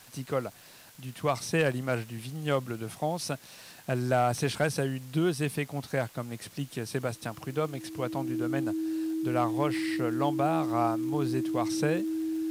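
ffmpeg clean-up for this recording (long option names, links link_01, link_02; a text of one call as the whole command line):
ffmpeg -i in.wav -af "adeclick=threshold=4,bandreject=frequency=320:width=30,afwtdn=0.002" out.wav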